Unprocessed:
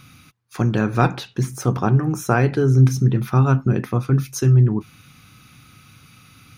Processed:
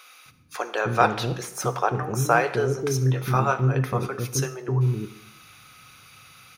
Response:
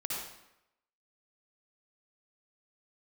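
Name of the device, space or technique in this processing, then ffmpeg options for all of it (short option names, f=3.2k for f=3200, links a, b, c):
saturated reverb return: -filter_complex "[0:a]lowshelf=f=350:t=q:w=1.5:g=-9.5,asettb=1/sr,asplit=3[a][b][c];[a]atrim=end=3.064[d];[b]atrim=start=3.06:end=3.63,asetpts=PTS-STARTPTS,afade=t=in:d=0.004:c=qsin,afade=t=out:st=0.566:d=0.004:c=qsin,asplit=2[e][f];[f]adelay=23,volume=-5dB[g];[e][g]amix=inputs=2:normalize=0,atrim=end_sample=25137[h];[c]atrim=start=3.626[i];[d][h]acrossfade=d=0.004:c1=hsin:c2=qsin[j];[j][i]acrossfade=d=0.004:c1=qsin:c2=hsin,asplit=2[k][l];[1:a]atrim=start_sample=2205[m];[l][m]afir=irnorm=-1:irlink=0,asoftclip=type=tanh:threshold=-13.5dB,volume=-13.5dB[n];[k][n]amix=inputs=2:normalize=0,acrossover=split=400[o][p];[o]adelay=260[q];[q][p]amix=inputs=2:normalize=0"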